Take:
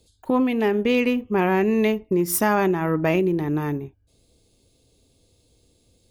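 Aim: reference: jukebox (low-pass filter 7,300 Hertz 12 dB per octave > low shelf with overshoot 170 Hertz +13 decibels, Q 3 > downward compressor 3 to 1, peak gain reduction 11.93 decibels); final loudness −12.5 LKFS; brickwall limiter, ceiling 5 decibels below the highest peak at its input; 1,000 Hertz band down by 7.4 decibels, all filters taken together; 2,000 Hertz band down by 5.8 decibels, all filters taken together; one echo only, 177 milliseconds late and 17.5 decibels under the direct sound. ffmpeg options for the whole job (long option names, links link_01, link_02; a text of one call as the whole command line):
ffmpeg -i in.wav -af "equalizer=frequency=1000:width_type=o:gain=-8,equalizer=frequency=2000:width_type=o:gain=-5,alimiter=limit=-15dB:level=0:latency=1,lowpass=7300,lowshelf=frequency=170:width_type=q:width=3:gain=13,aecho=1:1:177:0.133,acompressor=threshold=-31dB:ratio=3,volume=20dB" out.wav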